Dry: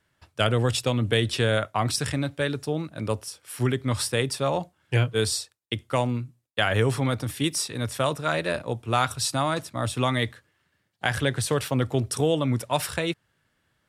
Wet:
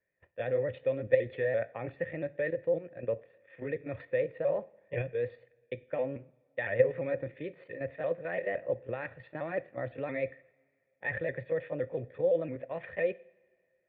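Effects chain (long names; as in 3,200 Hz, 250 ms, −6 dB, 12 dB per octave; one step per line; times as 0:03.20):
pitch shifter swept by a sawtooth +3 semitones, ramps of 171 ms
output level in coarse steps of 10 dB
formant resonators in series e
coupled-rooms reverb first 0.54 s, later 2.3 s, from −18 dB, DRR 16.5 dB
level +9 dB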